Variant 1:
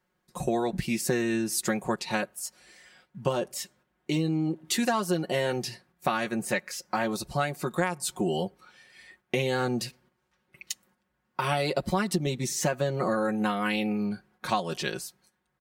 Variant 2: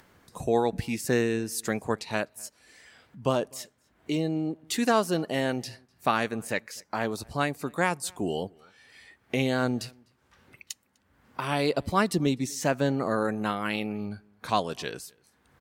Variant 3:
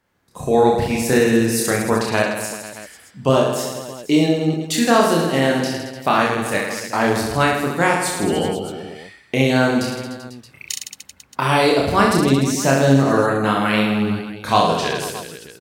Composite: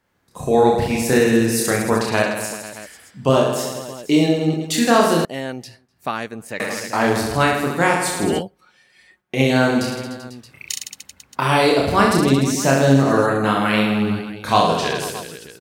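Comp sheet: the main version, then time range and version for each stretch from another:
3
5.25–6.6 from 2
8.4–9.37 from 1, crossfade 0.06 s

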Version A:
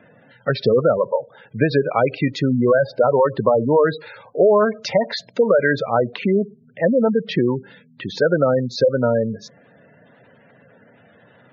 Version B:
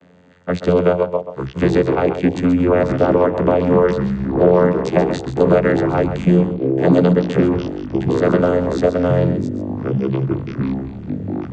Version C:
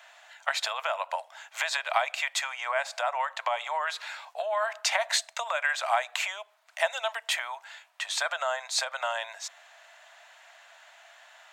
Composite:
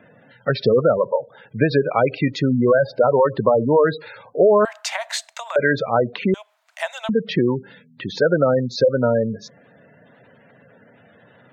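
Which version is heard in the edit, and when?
A
4.65–5.56 from C
6.34–7.09 from C
not used: B

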